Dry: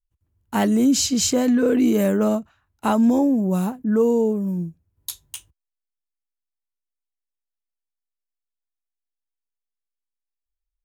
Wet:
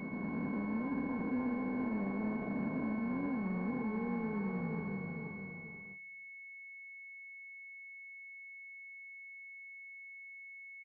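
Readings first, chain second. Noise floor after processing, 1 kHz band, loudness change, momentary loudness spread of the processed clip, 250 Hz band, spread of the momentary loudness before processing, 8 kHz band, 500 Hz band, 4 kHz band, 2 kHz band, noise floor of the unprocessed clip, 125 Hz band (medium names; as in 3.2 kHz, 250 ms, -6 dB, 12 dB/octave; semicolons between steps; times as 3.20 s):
-51 dBFS, -15.0 dB, -20.0 dB, 12 LU, -15.5 dB, 17 LU, under -40 dB, -21.0 dB, under -40 dB, -5.0 dB, -85 dBFS, -12.0 dB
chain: spectral blur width 896 ms; bass shelf 250 Hz +11 dB; sample-and-hold 34×; feedback delay 479 ms, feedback 30%, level -10 dB; gate with hold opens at -39 dBFS; bass shelf 99 Hz -9.5 dB; peak limiter -17 dBFS, peak gain reduction 9 dB; compression 2:1, threshold -33 dBFS, peak gain reduction 7 dB; reverse echo 399 ms -7 dB; class-D stage that switches slowly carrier 2.2 kHz; trim -6 dB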